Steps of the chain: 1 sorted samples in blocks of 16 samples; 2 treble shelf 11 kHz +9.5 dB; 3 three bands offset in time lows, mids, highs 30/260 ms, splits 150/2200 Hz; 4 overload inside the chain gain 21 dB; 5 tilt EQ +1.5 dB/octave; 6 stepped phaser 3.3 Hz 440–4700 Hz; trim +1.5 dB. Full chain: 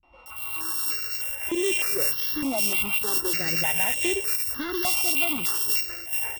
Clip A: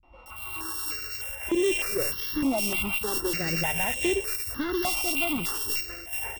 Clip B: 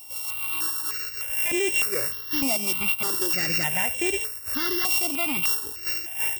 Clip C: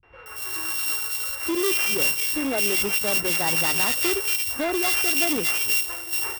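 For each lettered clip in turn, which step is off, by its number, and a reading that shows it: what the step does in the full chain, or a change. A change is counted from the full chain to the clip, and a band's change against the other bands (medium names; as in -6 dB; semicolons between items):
5, 8 kHz band -6.0 dB; 3, 125 Hz band +2.0 dB; 6, 125 Hz band -1.5 dB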